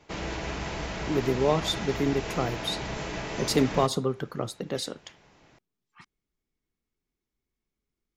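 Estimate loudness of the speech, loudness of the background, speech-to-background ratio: -28.5 LUFS, -34.0 LUFS, 5.5 dB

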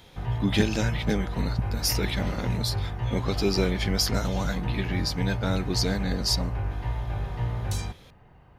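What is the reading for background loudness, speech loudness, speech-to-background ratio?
-31.5 LUFS, -28.5 LUFS, 3.0 dB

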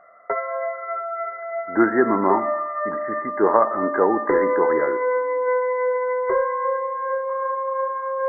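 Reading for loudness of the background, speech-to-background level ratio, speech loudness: -24.0 LUFS, 2.0 dB, -22.0 LUFS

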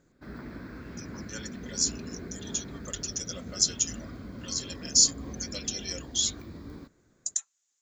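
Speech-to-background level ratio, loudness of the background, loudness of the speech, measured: 13.5 dB, -42.0 LUFS, -28.5 LUFS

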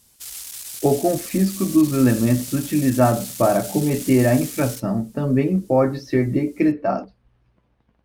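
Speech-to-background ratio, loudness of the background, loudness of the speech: 11.5 dB, -31.5 LUFS, -20.0 LUFS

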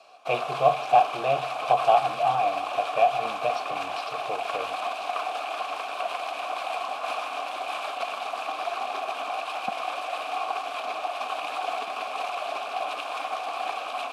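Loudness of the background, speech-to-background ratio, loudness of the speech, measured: -31.0 LUFS, 5.5 dB, -25.5 LUFS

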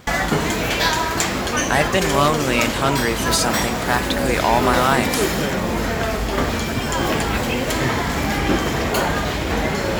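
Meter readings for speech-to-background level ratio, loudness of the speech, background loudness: 0.0 dB, -20.5 LUFS, -20.5 LUFS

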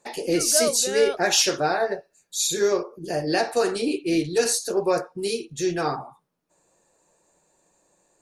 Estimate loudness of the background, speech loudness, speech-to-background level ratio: -28.5 LUFS, -23.0 LUFS, 5.5 dB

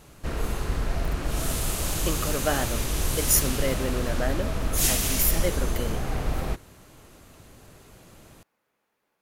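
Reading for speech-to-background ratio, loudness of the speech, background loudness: -0.5 dB, -28.5 LUFS, -28.0 LUFS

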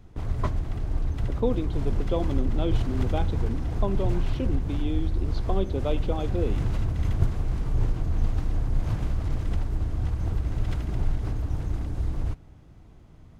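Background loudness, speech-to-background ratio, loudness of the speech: -30.0 LUFS, -2.0 dB, -32.0 LUFS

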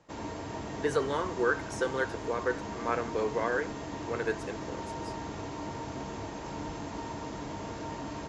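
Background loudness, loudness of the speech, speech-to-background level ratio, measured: -39.0 LUFS, -32.5 LUFS, 6.5 dB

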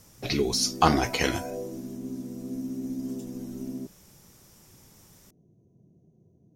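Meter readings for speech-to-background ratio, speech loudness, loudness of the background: 11.5 dB, -25.5 LUFS, -37.0 LUFS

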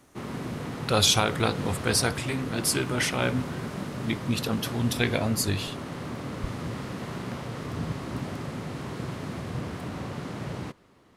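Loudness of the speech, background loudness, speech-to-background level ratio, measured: -26.5 LUFS, -35.0 LUFS, 8.5 dB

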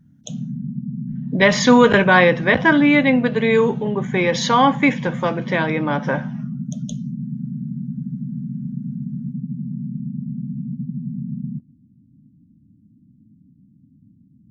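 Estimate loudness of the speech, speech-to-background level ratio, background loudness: -16.5 LUFS, 12.0 dB, -28.5 LUFS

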